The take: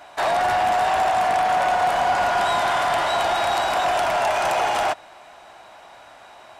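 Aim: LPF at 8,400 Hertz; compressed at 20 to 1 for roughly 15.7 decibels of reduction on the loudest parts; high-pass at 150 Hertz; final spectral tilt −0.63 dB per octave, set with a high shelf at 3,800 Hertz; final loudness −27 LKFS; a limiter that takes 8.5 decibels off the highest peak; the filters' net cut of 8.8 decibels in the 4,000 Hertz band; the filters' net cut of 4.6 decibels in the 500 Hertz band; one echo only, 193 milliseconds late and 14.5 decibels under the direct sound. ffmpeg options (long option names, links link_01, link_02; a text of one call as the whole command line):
ffmpeg -i in.wav -af "highpass=150,lowpass=8400,equalizer=frequency=500:width_type=o:gain=-7,highshelf=frequency=3800:gain=-7,equalizer=frequency=4000:width_type=o:gain=-7.5,acompressor=threshold=-36dB:ratio=20,alimiter=level_in=11dB:limit=-24dB:level=0:latency=1,volume=-11dB,aecho=1:1:193:0.188,volume=15.5dB" out.wav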